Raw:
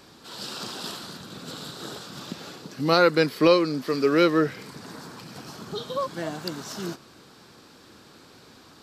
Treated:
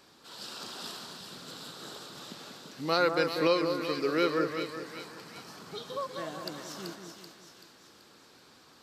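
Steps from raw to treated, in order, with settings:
low-shelf EQ 270 Hz −7.5 dB
echo with a time of its own for lows and highs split 1,600 Hz, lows 191 ms, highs 383 ms, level −6 dB
level −6.5 dB

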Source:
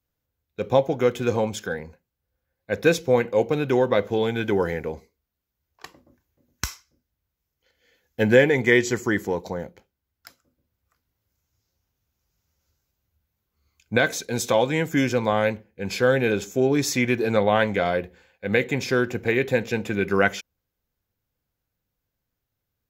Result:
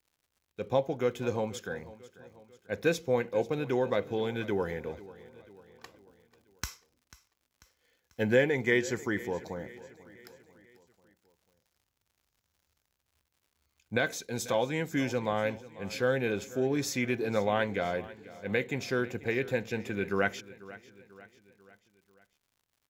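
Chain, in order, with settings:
surface crackle 130 per second −49 dBFS
repeating echo 492 ms, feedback 51%, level −18.5 dB
level −8.5 dB

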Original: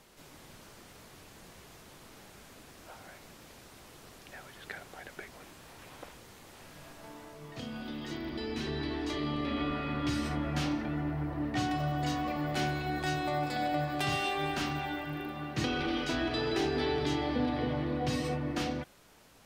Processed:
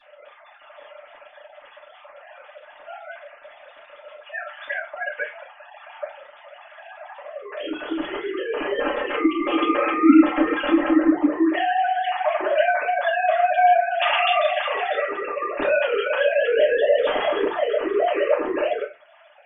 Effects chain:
three sine waves on the formant tracks
0:08.75–0:11.07: comb filter 3.8 ms, depth 81%
convolution reverb RT60 0.25 s, pre-delay 3 ms, DRR −9.5 dB

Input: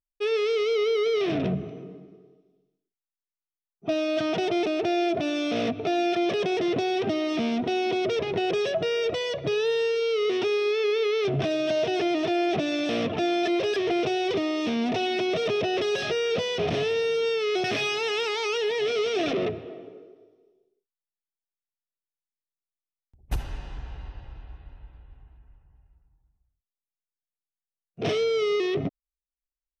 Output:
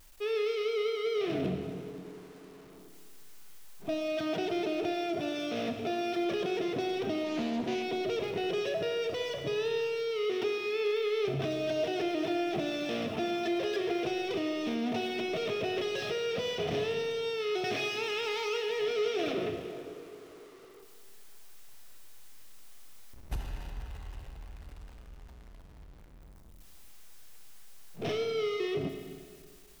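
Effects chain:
converter with a step at zero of −40 dBFS
four-comb reverb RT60 1.9 s, combs from 26 ms, DRR 6 dB
0:07.24–0:07.83: highs frequency-modulated by the lows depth 0.25 ms
level −8 dB

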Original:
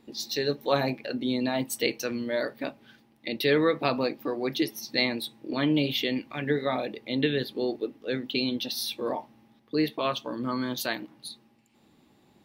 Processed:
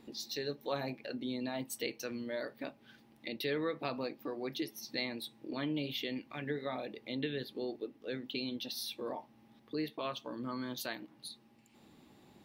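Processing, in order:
downward compressor 1.5 to 1, threshold −57 dBFS, peak gain reduction 13.5 dB
level +1 dB

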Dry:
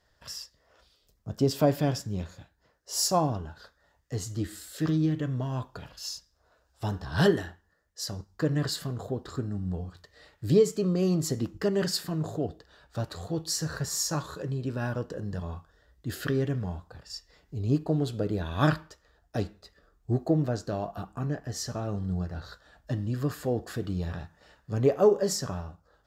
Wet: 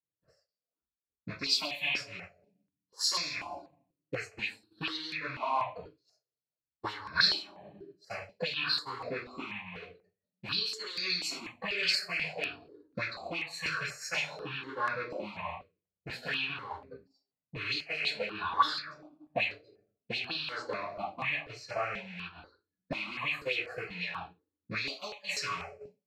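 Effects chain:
loose part that buzzes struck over −33 dBFS, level −23 dBFS
reverb reduction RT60 1.9 s
coupled-rooms reverb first 0.41 s, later 1.8 s, from −21 dB, DRR −10 dB
downward compressor 1.5 to 1, threshold −30 dBFS, peak gain reduction 9 dB
envelope filter 220–4,100 Hz, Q 2.3, up, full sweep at −18 dBFS
downward expander −41 dBFS
parametric band 4,200 Hz +14.5 dB 0.22 octaves
step-sequenced phaser 4.1 Hz 220–3,000 Hz
level +7 dB

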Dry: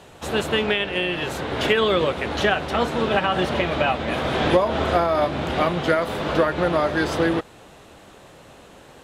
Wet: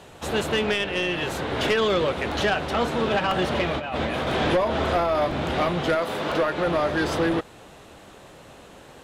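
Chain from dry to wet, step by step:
0:03.72–0:04.27: compressor whose output falls as the input rises −27 dBFS, ratio −1
0:05.95–0:06.67: high-pass filter 210 Hz 6 dB per octave
soft clipping −15.5 dBFS, distortion −14 dB
regular buffer underruns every 1.00 s, samples 128, repeat, from 0:00.31

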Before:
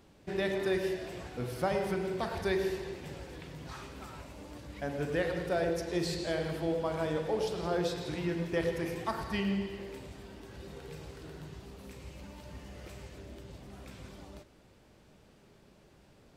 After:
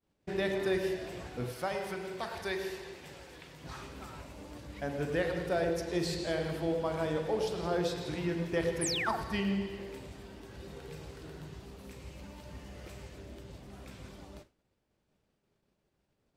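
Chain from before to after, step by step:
downward expander −48 dBFS
0:01.52–0:03.64: low-shelf EQ 490 Hz −10 dB
0:08.81–0:09.17: sound drawn into the spectrogram fall 620–11,000 Hz −34 dBFS

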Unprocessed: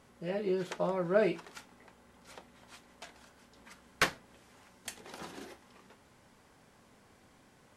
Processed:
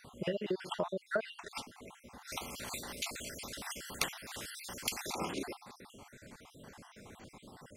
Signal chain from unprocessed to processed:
time-frequency cells dropped at random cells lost 52%
dynamic equaliser 3,000 Hz, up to +4 dB, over −55 dBFS, Q 0.96
downward compressor 6 to 1, threshold −43 dBFS, peak gain reduction 19 dB
0:02.32–0:05.13: every bin compressed towards the loudest bin 2 to 1
level +10.5 dB

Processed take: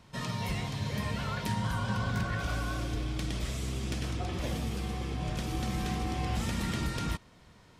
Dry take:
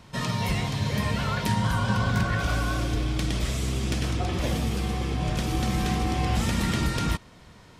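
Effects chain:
gain into a clipping stage and back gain 16 dB
level −7 dB

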